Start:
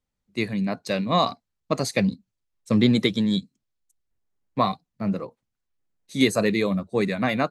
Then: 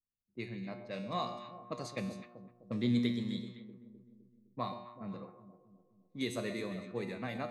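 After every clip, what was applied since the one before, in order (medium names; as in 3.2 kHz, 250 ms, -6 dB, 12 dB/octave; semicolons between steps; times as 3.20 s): feedback comb 120 Hz, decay 1.1 s, harmonics all, mix 80%; echo whose repeats swap between lows and highs 128 ms, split 970 Hz, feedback 74%, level -10 dB; level-controlled noise filter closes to 380 Hz, open at -31 dBFS; trim -4.5 dB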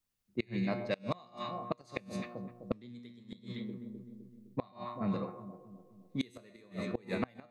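inverted gate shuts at -29 dBFS, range -29 dB; trim +9.5 dB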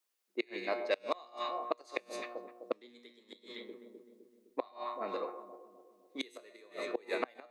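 inverse Chebyshev high-pass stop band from 170 Hz, stop band 40 dB; trim +3 dB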